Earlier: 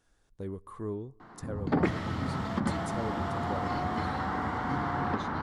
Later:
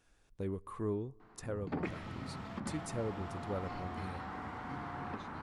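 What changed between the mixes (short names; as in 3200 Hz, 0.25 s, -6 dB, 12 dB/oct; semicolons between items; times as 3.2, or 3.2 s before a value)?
background -11.5 dB; master: add bell 2500 Hz +8 dB 0.31 oct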